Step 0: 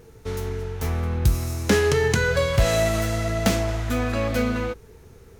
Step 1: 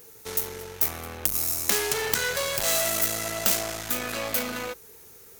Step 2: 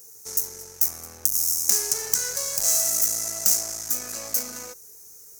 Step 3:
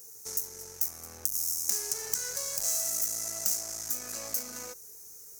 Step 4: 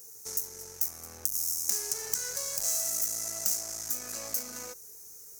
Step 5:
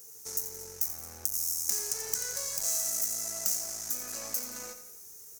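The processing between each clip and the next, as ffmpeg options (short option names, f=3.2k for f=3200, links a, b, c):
-af "aeval=exprs='(tanh(15.8*val(0)+0.55)-tanh(0.55))/15.8':c=same,aemphasis=mode=production:type=riaa,aeval=exprs='(mod(1.68*val(0)+1,2)-1)/1.68':c=same"
-af "highshelf=f=4.5k:t=q:w=3:g=10.5,volume=-8.5dB"
-af "acompressor=threshold=-35dB:ratio=1.5,volume=-2dB"
-af anull
-filter_complex "[0:a]acrusher=bits=10:mix=0:aa=0.000001,asplit=2[a][b];[b]aecho=0:1:86|172|258|344|430:0.316|0.155|0.0759|0.0372|0.0182[c];[a][c]amix=inputs=2:normalize=0,volume=-1dB"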